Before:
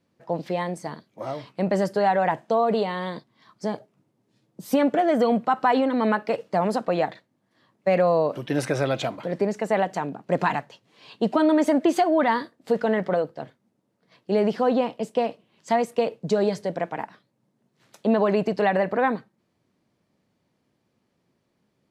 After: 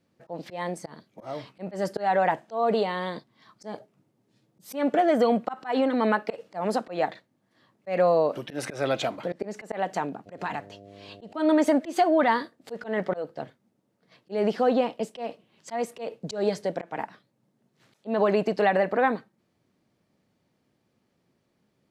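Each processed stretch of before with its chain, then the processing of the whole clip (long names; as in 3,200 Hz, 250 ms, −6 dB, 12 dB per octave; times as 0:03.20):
0:10.25–0:11.32: downward compressor 2 to 1, threshold −30 dBFS + hum with harmonics 100 Hz, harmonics 7, −48 dBFS 0 dB per octave
whole clip: notch filter 1,000 Hz, Q 18; dynamic equaliser 120 Hz, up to −7 dB, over −41 dBFS, Q 0.99; volume swells 162 ms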